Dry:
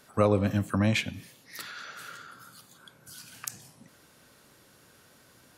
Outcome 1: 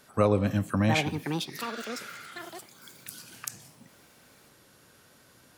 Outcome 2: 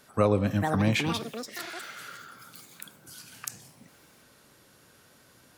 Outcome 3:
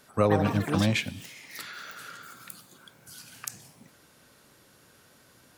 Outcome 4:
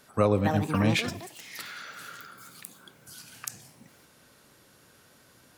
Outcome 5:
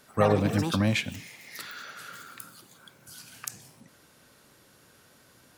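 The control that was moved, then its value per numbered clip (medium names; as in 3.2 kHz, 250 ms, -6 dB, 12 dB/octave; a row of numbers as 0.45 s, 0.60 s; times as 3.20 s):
ever faster or slower copies, time: 769 ms, 504 ms, 182 ms, 329 ms, 82 ms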